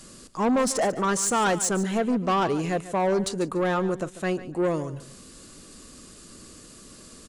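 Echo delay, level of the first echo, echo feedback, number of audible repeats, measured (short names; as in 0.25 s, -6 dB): 0.144 s, -15.0 dB, 24%, 2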